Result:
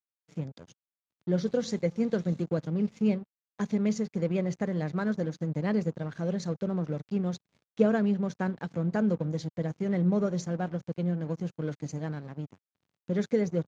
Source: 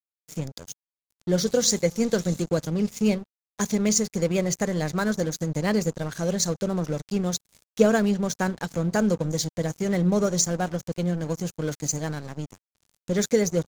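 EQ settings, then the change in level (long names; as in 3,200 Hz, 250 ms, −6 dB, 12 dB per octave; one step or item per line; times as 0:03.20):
high-pass filter 130 Hz 12 dB per octave
low-pass filter 3,000 Hz 12 dB per octave
low-shelf EQ 280 Hz +8.5 dB
−8.0 dB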